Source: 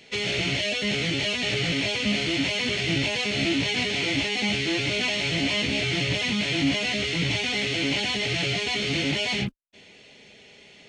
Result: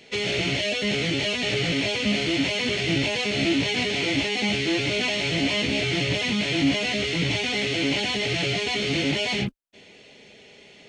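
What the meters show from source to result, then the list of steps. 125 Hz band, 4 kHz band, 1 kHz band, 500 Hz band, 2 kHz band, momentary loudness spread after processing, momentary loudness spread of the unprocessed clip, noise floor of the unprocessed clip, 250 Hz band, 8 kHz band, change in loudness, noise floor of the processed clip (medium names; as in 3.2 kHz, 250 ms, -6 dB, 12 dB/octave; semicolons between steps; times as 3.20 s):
+1.0 dB, 0.0 dB, +2.0 dB, +3.0 dB, +0.5 dB, 2 LU, 1 LU, -51 dBFS, +2.0 dB, 0.0 dB, +1.0 dB, -50 dBFS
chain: peaking EQ 430 Hz +3.5 dB 1.9 oct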